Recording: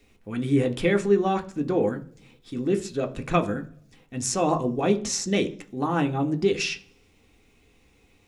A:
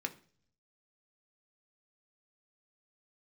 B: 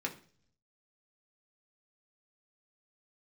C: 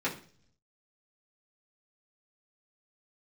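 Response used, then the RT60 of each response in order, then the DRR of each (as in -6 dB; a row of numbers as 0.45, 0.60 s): A; 0.45, 0.45, 0.45 s; 5.0, 0.0, -8.5 dB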